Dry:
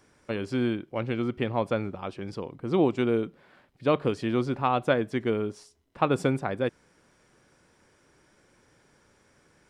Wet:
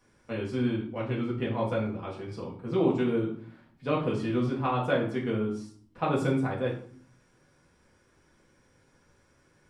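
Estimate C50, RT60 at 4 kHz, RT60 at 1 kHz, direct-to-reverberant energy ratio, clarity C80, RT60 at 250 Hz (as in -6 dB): 6.5 dB, 0.35 s, 0.55 s, -4.5 dB, 11.0 dB, 0.80 s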